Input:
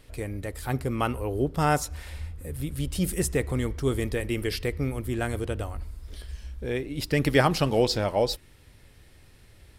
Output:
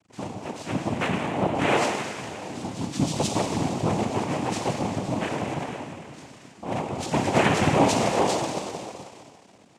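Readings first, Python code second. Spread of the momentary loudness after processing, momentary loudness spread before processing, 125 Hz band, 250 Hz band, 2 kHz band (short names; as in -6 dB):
16 LU, 15 LU, -1.0 dB, +3.0 dB, +2.5 dB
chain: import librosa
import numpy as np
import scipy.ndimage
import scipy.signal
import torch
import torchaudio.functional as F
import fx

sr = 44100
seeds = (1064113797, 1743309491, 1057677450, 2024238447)

y = fx.freq_compress(x, sr, knee_hz=1700.0, ratio=1.5)
y = fx.rev_schroeder(y, sr, rt60_s=2.7, comb_ms=25, drr_db=0.0)
y = np.sign(y) * np.maximum(np.abs(y) - 10.0 ** (-52.0 / 20.0), 0.0)
y = fx.noise_vocoder(y, sr, seeds[0], bands=4)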